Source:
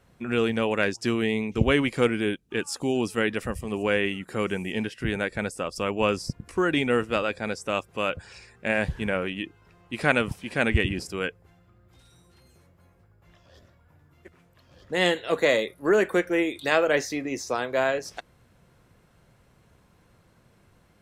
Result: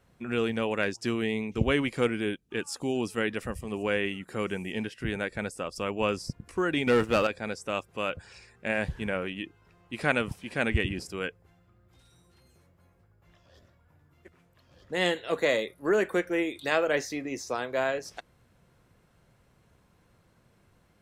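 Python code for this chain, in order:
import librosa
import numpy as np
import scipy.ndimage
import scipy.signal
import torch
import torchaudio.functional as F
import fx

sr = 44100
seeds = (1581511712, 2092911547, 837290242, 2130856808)

y = fx.leveller(x, sr, passes=2, at=(6.87, 7.27))
y = y * 10.0 ** (-4.0 / 20.0)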